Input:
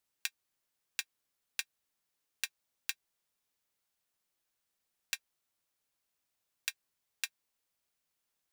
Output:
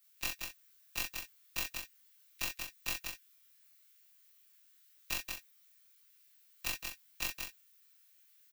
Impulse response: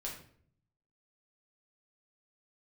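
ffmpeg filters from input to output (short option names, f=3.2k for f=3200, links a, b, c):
-af "afftfilt=real='re':imag='-im':win_size=2048:overlap=0.75,highpass=f=1.4k:w=0.5412,highpass=f=1.4k:w=1.3066,aecho=1:1:5.9:0.82,alimiter=limit=-23dB:level=0:latency=1:release=149,aeval=exprs='clip(val(0),-1,0.00168)':c=same,aexciter=amount=1.9:drive=6.1:freq=12k,aeval=exprs='0.0376*(cos(1*acos(clip(val(0)/0.0376,-1,1)))-cos(1*PI/2))+0.00266*(cos(6*acos(clip(val(0)/0.0376,-1,1)))-cos(6*PI/2))':c=same,aecho=1:1:40.82|180.8|221.6:0.631|0.562|0.251,volume=12dB"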